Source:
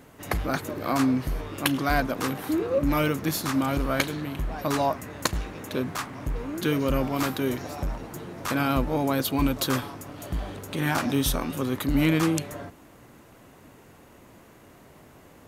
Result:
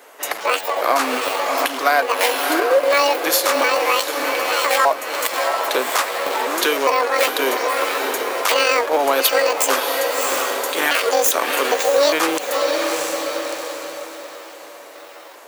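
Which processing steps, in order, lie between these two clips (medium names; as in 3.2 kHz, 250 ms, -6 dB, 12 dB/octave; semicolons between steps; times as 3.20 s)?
pitch shift switched off and on +11 st, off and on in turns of 404 ms; in parallel at -6 dB: Schmitt trigger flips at -23.5 dBFS; on the sum: high-pass 460 Hz 24 dB/octave; on a send: echo that smears into a reverb 658 ms, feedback 45%, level -8 dB; on the sum: compression 3:1, threshold -35 dBFS, peak gain reduction 12.5 dB; loudness maximiser +22 dB; three bands expanded up and down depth 40%; trim -3.5 dB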